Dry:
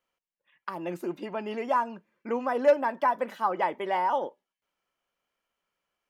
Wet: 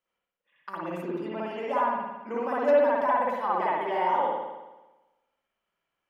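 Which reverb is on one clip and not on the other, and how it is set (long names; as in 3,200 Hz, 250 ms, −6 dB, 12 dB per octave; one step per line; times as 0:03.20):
spring reverb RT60 1.1 s, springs 55 ms, chirp 45 ms, DRR −6 dB
level −6 dB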